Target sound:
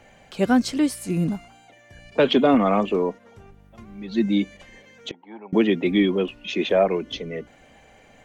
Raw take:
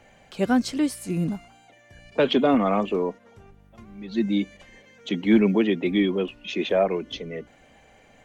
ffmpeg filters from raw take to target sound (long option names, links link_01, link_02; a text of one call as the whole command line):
ffmpeg -i in.wav -filter_complex "[0:a]asettb=1/sr,asplit=3[link_01][link_02][link_03];[link_01]atrim=end=5.114[link_04];[link_02]atrim=start=5.11:end=5.53,asetpts=PTS-STARTPTS,afade=type=in:duration=0.004:curve=qsin,afade=type=out:start_time=0.416:duration=0.004:curve=qsin,bandpass=frequency=860:width_type=q:width=8.3:csg=0[link_05];[link_03]atrim=start=5.526[link_06];[link_04][link_05]acrossfade=duration=0.004:curve1=hsin:curve2=qsin[link_07];[link_07][link_06]acrossfade=duration=0.004:curve1=qsin:curve2=hsin,volume=2.5dB" out.wav